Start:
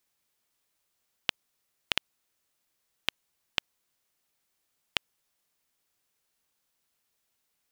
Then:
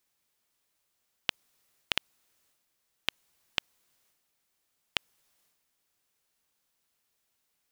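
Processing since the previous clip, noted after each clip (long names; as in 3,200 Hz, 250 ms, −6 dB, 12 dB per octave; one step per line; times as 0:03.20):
transient designer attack −1 dB, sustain +6 dB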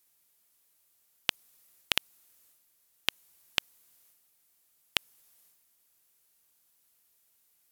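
parametric band 13,000 Hz +12 dB 1.2 octaves
level +1 dB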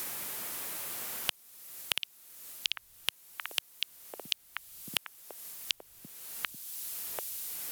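echo through a band-pass that steps 740 ms, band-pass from 3,500 Hz, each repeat −1.4 octaves, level −9.5 dB
soft clipping −16 dBFS, distortion −5 dB
multiband upward and downward compressor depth 100%
level +8.5 dB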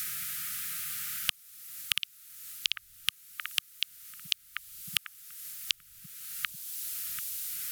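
linear-phase brick-wall band-stop 200–1,200 Hz
level +2.5 dB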